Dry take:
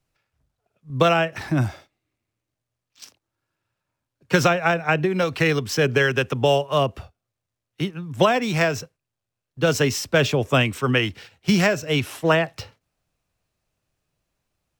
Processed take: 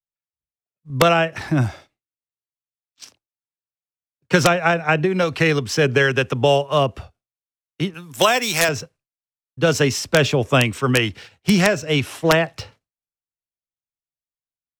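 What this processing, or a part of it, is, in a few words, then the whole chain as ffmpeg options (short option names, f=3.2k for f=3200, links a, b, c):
overflowing digital effects unit: -filter_complex "[0:a]agate=range=-33dB:threshold=-49dB:ratio=3:detection=peak,asettb=1/sr,asplit=3[a][b][c];[a]atrim=end=7.944[d];[b]atrim=start=7.94:end=8.69,asetpts=PTS-STARTPTS,afade=t=in:d=0.004:c=qsin,afade=t=out:st=0.746:d=0.004:c=qsin,aemphasis=mode=production:type=riaa[e];[c]atrim=start=8.686[f];[d][e]acrossfade=d=0.004:c1=hsin:c2=qsin[g];[g][f]acrossfade=d=0.004:c1=qsin:c2=hsin,aeval=exprs='(mod(2*val(0)+1,2)-1)/2':c=same,lowpass=12k,volume=2.5dB"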